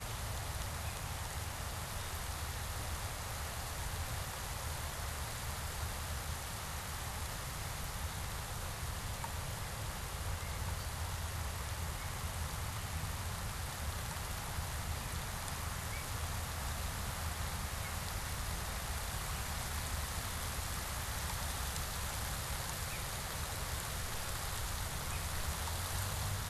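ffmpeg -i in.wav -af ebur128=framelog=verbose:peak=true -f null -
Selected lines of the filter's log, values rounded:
Integrated loudness:
  I:         -40.1 LUFS
  Threshold: -50.1 LUFS
Loudness range:
  LRA:         2.1 LU
  Threshold: -60.1 LUFS
  LRA low:   -41.0 LUFS
  LRA high:  -39.0 LUFS
True peak:
  Peak:      -23.4 dBFS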